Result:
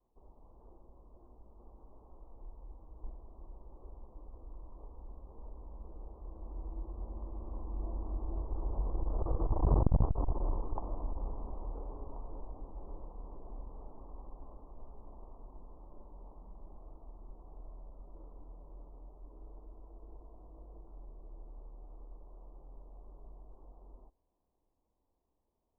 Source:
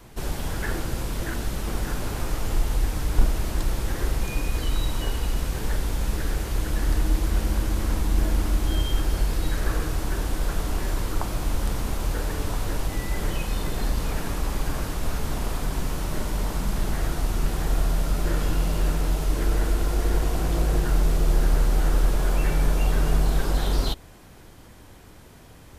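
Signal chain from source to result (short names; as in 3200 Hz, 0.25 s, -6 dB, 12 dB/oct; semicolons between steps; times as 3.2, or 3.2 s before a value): Doppler pass-by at 9.82, 16 m/s, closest 3.1 m; steep low-pass 1100 Hz 72 dB/oct; bell 130 Hz -12 dB 1.4 oct; core saturation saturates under 170 Hz; gain +7 dB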